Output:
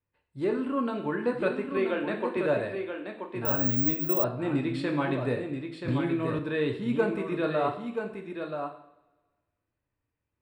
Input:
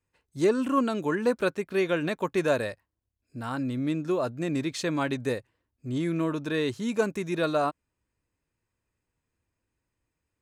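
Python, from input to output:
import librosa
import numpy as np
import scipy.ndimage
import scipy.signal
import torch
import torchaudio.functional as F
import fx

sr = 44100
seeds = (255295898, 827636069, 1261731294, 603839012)

y = fx.ellip_highpass(x, sr, hz=200.0, order=4, stop_db=40, at=(1.77, 2.37))
y = fx.rider(y, sr, range_db=3, speed_s=0.5)
y = scipy.signal.lfilter(np.full(7, 1.0 / 7), 1.0, y)
y = y + 10.0 ** (-6.5 / 20.0) * np.pad(y, (int(980 * sr / 1000.0), 0))[:len(y)]
y = fx.rev_double_slope(y, sr, seeds[0], early_s=0.62, late_s=1.6, knee_db=-19, drr_db=2.5)
y = fx.resample_bad(y, sr, factor=2, down='none', up='zero_stuff', at=(3.45, 4.24))
y = fx.band_squash(y, sr, depth_pct=100, at=(5.88, 6.39))
y = y * 10.0 ** (-2.5 / 20.0)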